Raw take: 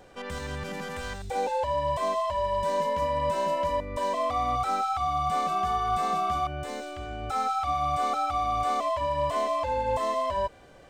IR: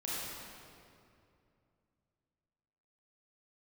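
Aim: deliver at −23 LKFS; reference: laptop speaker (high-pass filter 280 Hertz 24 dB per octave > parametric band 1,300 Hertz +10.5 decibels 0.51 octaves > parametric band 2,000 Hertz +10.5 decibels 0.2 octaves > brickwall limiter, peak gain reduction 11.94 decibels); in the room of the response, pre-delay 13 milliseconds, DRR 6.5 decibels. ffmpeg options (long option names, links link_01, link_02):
-filter_complex "[0:a]asplit=2[link_01][link_02];[1:a]atrim=start_sample=2205,adelay=13[link_03];[link_02][link_03]afir=irnorm=-1:irlink=0,volume=-10dB[link_04];[link_01][link_04]amix=inputs=2:normalize=0,highpass=frequency=280:width=0.5412,highpass=frequency=280:width=1.3066,equalizer=frequency=1300:width_type=o:width=0.51:gain=10.5,equalizer=frequency=2000:width_type=o:width=0.2:gain=10.5,volume=6.5dB,alimiter=limit=-16dB:level=0:latency=1"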